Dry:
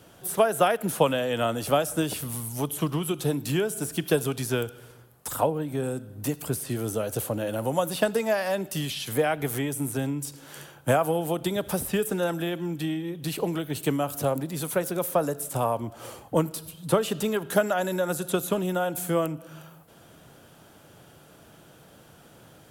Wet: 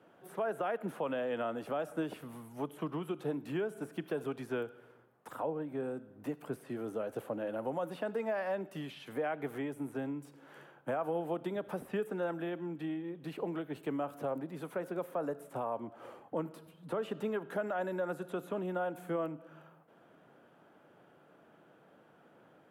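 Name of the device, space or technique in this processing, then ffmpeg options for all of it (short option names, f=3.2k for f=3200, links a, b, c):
DJ mixer with the lows and highs turned down: -filter_complex "[0:a]acrossover=split=170 2400:gain=0.0794 1 0.0891[a][b][c];[a][b][c]amix=inputs=3:normalize=0,alimiter=limit=-19dB:level=0:latency=1:release=51,volume=-7dB"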